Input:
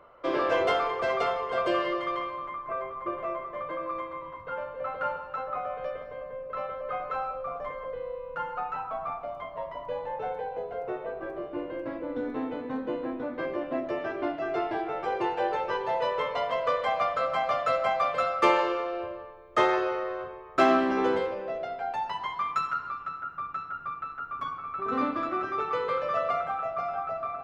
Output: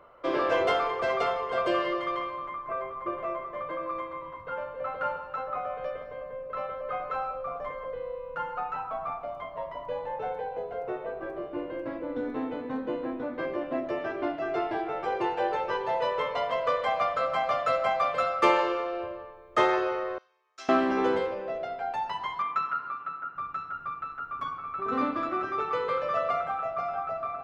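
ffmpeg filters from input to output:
-filter_complex "[0:a]asettb=1/sr,asplit=3[s0][s1][s2];[s0]atrim=end=20.184[s3];[s1]atrim=start=20.18:end=20.69,asetpts=PTS-STARTPTS,afade=t=in:d=0.004:c=qsin,afade=t=out:st=0.506:d=0.004:c=qsin,bandpass=f=5800:t=q:w=3.2[s4];[s2]atrim=start=20.686[s5];[s3][s4]acrossfade=d=0.004:c1=hsin:c2=qsin[s6];[s6][s5]acrossfade=d=0.004:c1=qsin:c2=hsin,asettb=1/sr,asplit=3[s7][s8][s9];[s7]atrim=end=22.424[s10];[s8]atrim=start=22.42:end=23.36,asetpts=PTS-STARTPTS,afade=t=in:d=0.004:c=qsin,afade=t=out:st=0.936:d=0.004:c=qsin,highpass=170,lowpass=3100[s11];[s9]atrim=start=23.356[s12];[s10][s11]acrossfade=d=0.004:c1=hsin:c2=qsin[s13];[s13][s12]acrossfade=d=0.004:c1=qsin:c2=hsin"

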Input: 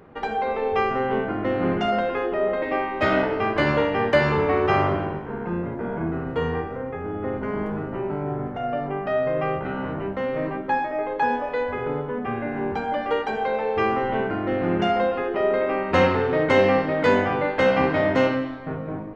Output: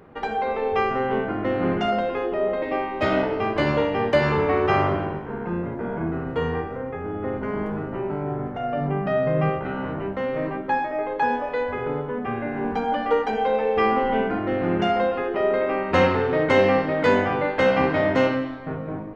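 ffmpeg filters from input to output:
-filter_complex "[0:a]asettb=1/sr,asplit=3[s0][s1][s2];[s0]atrim=end=1.934[s3];[s1]atrim=start=1.93:end=4.23,asetpts=PTS-STARTPTS,afade=t=in:d=0.004:c=qsin,afade=t=out:st=2.296:d=0.004:c=qsin,equalizer=f=1600:w=1.5:g=-4.5[s4];[s2]atrim=start=4.226[s5];[s3][s4]acrossfade=d=0.004:c1=hsin:c2=qsin[s6];[s6][s5]acrossfade=d=0.004:c1=qsin:c2=hsin,asettb=1/sr,asplit=3[s7][s8][s9];[s7]atrim=end=8.774[s10];[s8]atrim=start=8.77:end=9.5,asetpts=PTS-STARTPTS,afade=t=in:d=0.004:c=qsin,afade=t=out:st=0.726:d=0.004:c=qsin,equalizer=f=170:t=o:w=0.77:g=12.5[s11];[s9]atrim=start=9.496[s12];[s10][s11]acrossfade=d=0.004:c1=hsin:c2=qsin[s13];[s13][s12]acrossfade=d=0.004:c1=qsin:c2=hsin,asettb=1/sr,asplit=3[s14][s15][s16];[s14]atrim=end=12.644[s17];[s15]atrim=start=12.64:end=14.39,asetpts=PTS-STARTPTS,afade=t=in:d=0.004:c=qsin,afade=t=out:st=1.746:d=0.004:c=qsin,aecho=1:1:4.1:0.65,atrim=end_sample=77175[s18];[s16]atrim=start=14.386[s19];[s17][s18]acrossfade=d=0.004:c1=hsin:c2=qsin[s20];[s20][s19]acrossfade=d=0.004:c1=qsin:c2=hsin"

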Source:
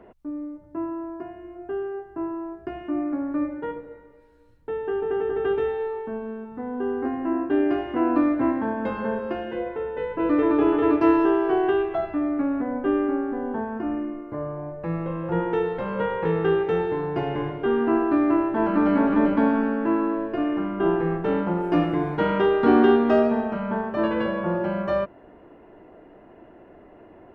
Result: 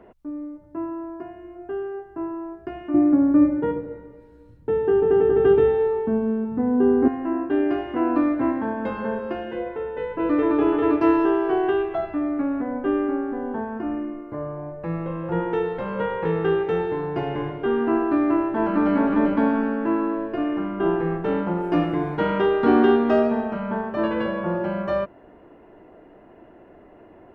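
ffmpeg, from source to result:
-filter_complex "[0:a]asettb=1/sr,asplit=3[s0][s1][s2];[s0]atrim=end=2.944[s3];[s1]atrim=start=2.94:end=7.08,asetpts=PTS-STARTPTS,afade=t=in:d=0.004:c=qsin,afade=t=out:st=4.136:d=0.004:c=qsin,equalizer=f=140:w=0.32:g=13.5[s4];[s2]atrim=start=7.076[s5];[s3][s4]acrossfade=d=0.004:c1=hsin:c2=qsin[s6];[s6][s5]acrossfade=d=0.004:c1=qsin:c2=hsin"

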